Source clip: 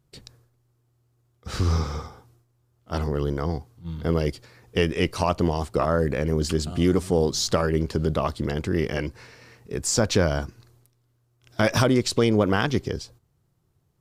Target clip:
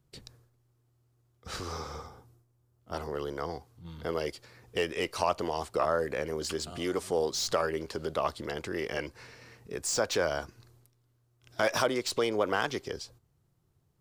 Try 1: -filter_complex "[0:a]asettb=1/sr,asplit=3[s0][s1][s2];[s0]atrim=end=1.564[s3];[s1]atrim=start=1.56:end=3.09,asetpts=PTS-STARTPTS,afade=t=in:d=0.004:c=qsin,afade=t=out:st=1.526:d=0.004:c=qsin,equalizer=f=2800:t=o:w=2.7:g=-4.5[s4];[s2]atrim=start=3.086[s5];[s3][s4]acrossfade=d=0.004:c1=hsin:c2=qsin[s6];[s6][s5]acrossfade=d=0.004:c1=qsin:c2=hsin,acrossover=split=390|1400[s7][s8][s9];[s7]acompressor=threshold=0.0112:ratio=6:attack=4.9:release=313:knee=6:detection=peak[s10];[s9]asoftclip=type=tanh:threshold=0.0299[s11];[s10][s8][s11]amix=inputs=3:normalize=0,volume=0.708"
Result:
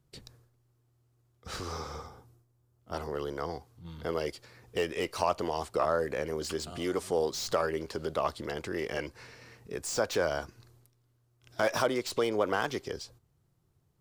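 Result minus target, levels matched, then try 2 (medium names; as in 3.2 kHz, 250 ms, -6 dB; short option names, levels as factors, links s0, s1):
saturation: distortion +6 dB
-filter_complex "[0:a]asettb=1/sr,asplit=3[s0][s1][s2];[s0]atrim=end=1.564[s3];[s1]atrim=start=1.56:end=3.09,asetpts=PTS-STARTPTS,afade=t=in:d=0.004:c=qsin,afade=t=out:st=1.526:d=0.004:c=qsin,equalizer=f=2800:t=o:w=2.7:g=-4.5[s4];[s2]atrim=start=3.086[s5];[s3][s4]acrossfade=d=0.004:c1=hsin:c2=qsin[s6];[s6][s5]acrossfade=d=0.004:c1=qsin:c2=hsin,acrossover=split=390|1400[s7][s8][s9];[s7]acompressor=threshold=0.0112:ratio=6:attack=4.9:release=313:knee=6:detection=peak[s10];[s9]asoftclip=type=tanh:threshold=0.0668[s11];[s10][s8][s11]amix=inputs=3:normalize=0,volume=0.708"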